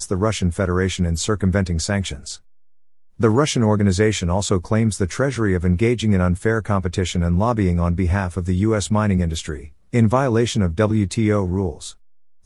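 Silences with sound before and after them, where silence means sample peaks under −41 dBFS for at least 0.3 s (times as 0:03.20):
0:02.39–0:03.19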